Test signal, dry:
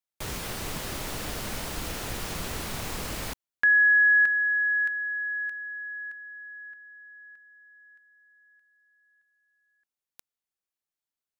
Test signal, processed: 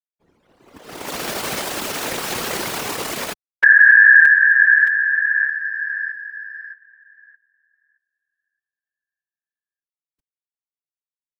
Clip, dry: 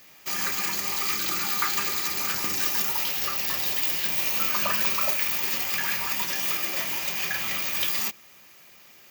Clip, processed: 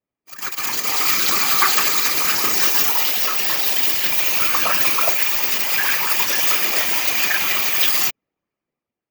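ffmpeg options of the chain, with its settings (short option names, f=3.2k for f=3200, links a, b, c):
-af "dynaudnorm=f=230:g=7:m=11dB,highpass=250,anlmdn=631,afftfilt=real='hypot(re,im)*cos(2*PI*random(0))':imag='hypot(re,im)*sin(2*PI*random(1))':win_size=512:overlap=0.75,alimiter=level_in=8.5dB:limit=-1dB:release=50:level=0:latency=1,volume=-1dB"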